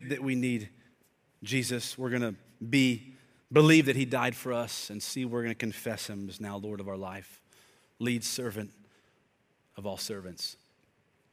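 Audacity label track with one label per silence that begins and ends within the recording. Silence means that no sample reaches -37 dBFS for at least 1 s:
8.650000	9.780000	silence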